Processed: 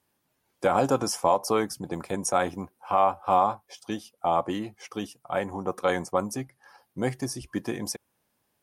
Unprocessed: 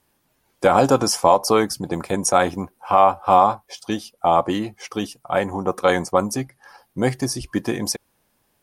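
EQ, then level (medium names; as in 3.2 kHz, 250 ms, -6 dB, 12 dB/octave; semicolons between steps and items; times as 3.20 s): high-pass 60 Hz; dynamic bell 4.4 kHz, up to -5 dB, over -45 dBFS, Q 3; -7.5 dB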